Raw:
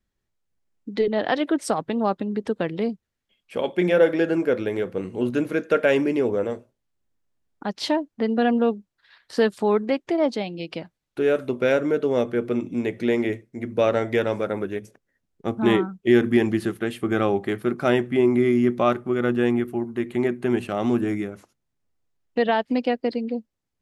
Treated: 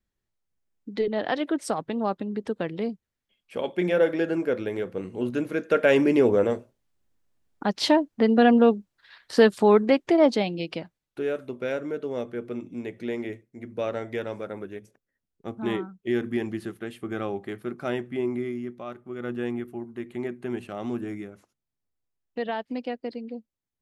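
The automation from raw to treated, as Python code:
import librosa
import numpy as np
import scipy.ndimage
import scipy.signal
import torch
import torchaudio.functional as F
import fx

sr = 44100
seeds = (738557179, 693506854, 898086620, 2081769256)

y = fx.gain(x, sr, db=fx.line((5.52, -4.0), (6.18, 3.0), (10.49, 3.0), (11.4, -9.0), (18.31, -9.0), (18.85, -18.0), (19.33, -9.0)))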